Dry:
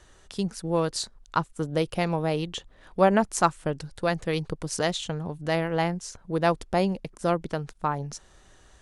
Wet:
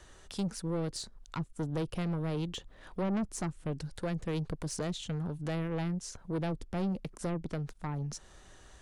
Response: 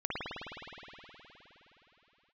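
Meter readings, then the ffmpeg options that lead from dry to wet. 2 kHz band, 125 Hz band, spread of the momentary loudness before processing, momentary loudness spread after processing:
-13.5 dB, -3.5 dB, 10 LU, 7 LU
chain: -filter_complex "[0:a]acrossover=split=390[s0][s1];[s1]acompressor=threshold=0.0112:ratio=3[s2];[s0][s2]amix=inputs=2:normalize=0,asoftclip=type=tanh:threshold=0.0398"

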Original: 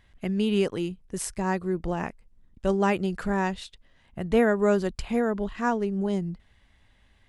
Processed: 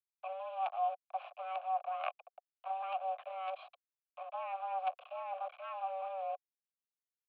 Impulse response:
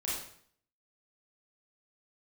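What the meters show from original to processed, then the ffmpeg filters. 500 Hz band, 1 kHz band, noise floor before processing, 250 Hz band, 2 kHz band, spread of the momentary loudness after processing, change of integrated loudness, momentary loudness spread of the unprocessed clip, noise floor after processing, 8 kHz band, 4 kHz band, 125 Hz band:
-17.0 dB, -3.0 dB, -62 dBFS, under -40 dB, -17.5 dB, 10 LU, -13.0 dB, 13 LU, under -85 dBFS, under -40 dB, -15.5 dB, under -40 dB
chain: -filter_complex "[0:a]areverse,acompressor=threshold=0.0251:ratio=16,areverse,acrusher=bits=5:dc=4:mix=0:aa=0.000001,highpass=f=170:t=q:w=0.5412,highpass=f=170:t=q:w=1.307,lowpass=f=3100:t=q:w=0.5176,lowpass=f=3100:t=q:w=0.7071,lowpass=f=3100:t=q:w=1.932,afreqshift=380,asplit=3[s0][s1][s2];[s0]bandpass=f=730:t=q:w=8,volume=1[s3];[s1]bandpass=f=1090:t=q:w=8,volume=0.501[s4];[s2]bandpass=f=2440:t=q:w=8,volume=0.355[s5];[s3][s4][s5]amix=inputs=3:normalize=0,volume=3.35"

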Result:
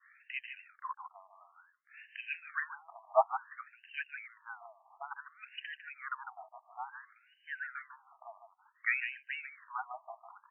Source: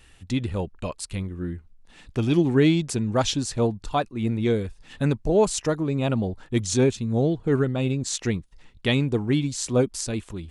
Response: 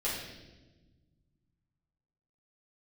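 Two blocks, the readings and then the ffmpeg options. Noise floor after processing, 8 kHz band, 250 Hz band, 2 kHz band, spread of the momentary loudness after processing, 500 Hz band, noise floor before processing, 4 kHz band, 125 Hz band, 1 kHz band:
-70 dBFS, under -40 dB, under -40 dB, -3.0 dB, 21 LU, -17.5 dB, -54 dBFS, -20.5 dB, under -40 dB, -5.5 dB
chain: -filter_complex "[0:a]asplit=2[s0][s1];[s1]adelay=151.6,volume=0.398,highshelf=f=4000:g=-3.41[s2];[s0][s2]amix=inputs=2:normalize=0,adynamicequalizer=threshold=0.00562:dfrequency=2200:dqfactor=1.4:tfrequency=2200:tqfactor=1.4:attack=5:release=100:ratio=0.375:range=2:mode=cutabove:tftype=bell,afftfilt=real='re*between(b*sr/1024,860*pow(2200/860,0.5+0.5*sin(2*PI*0.57*pts/sr))/1.41,860*pow(2200/860,0.5+0.5*sin(2*PI*0.57*pts/sr))*1.41)':imag='im*between(b*sr/1024,860*pow(2200/860,0.5+0.5*sin(2*PI*0.57*pts/sr))/1.41,860*pow(2200/860,0.5+0.5*sin(2*PI*0.57*pts/sr))*1.41)':win_size=1024:overlap=0.75,volume=1.12"

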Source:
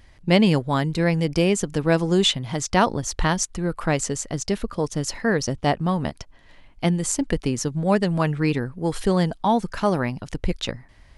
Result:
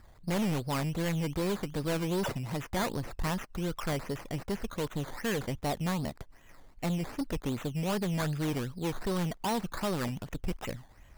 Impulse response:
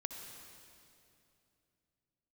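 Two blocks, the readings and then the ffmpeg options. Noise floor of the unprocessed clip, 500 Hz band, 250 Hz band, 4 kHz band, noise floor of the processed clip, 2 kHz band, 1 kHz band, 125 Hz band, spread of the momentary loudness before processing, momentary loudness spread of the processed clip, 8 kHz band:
-51 dBFS, -11.5 dB, -10.5 dB, -13.0 dB, -56 dBFS, -10.5 dB, -11.5 dB, -9.0 dB, 8 LU, 6 LU, -14.5 dB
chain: -filter_complex "[0:a]acrossover=split=2900[s0][s1];[s1]acompressor=threshold=0.0112:ratio=4:attack=1:release=60[s2];[s0][s2]amix=inputs=2:normalize=0,acrusher=samples=13:mix=1:aa=0.000001:lfo=1:lforange=7.8:lforate=2.6,asoftclip=type=tanh:threshold=0.075,volume=0.596"

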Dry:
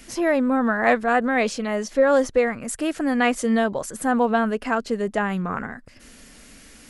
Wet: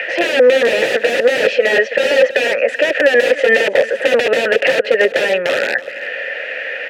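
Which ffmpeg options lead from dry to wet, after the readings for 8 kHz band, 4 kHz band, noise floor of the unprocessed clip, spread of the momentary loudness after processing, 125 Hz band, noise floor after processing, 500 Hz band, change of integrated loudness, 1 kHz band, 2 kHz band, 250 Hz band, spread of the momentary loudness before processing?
+1.5 dB, +16.0 dB, -48 dBFS, 10 LU, no reading, -27 dBFS, +10.5 dB, +8.0 dB, -2.0 dB, +12.0 dB, -5.5 dB, 8 LU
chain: -filter_complex "[0:a]asplit=2[s0][s1];[s1]highpass=f=720:p=1,volume=5.62,asoftclip=type=tanh:threshold=0.631[s2];[s0][s2]amix=inputs=2:normalize=0,lowpass=f=4800:p=1,volume=0.501,lowshelf=f=99:g=9.5,acrossover=split=230|430|2600[s3][s4][s5][s6];[s5]acompressor=mode=upward:threshold=0.0224:ratio=2.5[s7];[s3][s4][s7][s6]amix=inputs=4:normalize=0,acrossover=split=450 3400:gain=0.112 1 0.112[s8][s9][s10];[s8][s9][s10]amix=inputs=3:normalize=0,aeval=exprs='(mod(8.91*val(0)+1,2)-1)/8.91':c=same,highpass=61,deesser=0.4,asplit=3[s11][s12][s13];[s11]bandpass=f=530:t=q:w=8,volume=1[s14];[s12]bandpass=f=1840:t=q:w=8,volume=0.501[s15];[s13]bandpass=f=2480:t=q:w=8,volume=0.355[s16];[s14][s15][s16]amix=inputs=3:normalize=0,aecho=1:1:327:0.141,alimiter=level_in=26.6:limit=0.891:release=50:level=0:latency=1,volume=0.891"

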